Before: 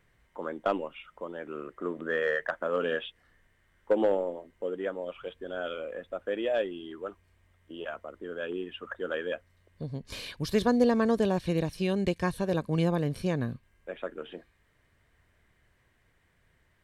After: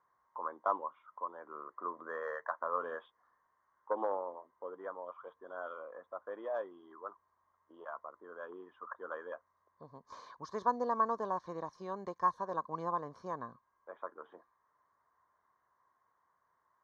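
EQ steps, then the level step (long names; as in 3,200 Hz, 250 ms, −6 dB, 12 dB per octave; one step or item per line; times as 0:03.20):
pair of resonant band-passes 2,600 Hz, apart 2.6 octaves
high-frequency loss of the air 340 metres
+11.0 dB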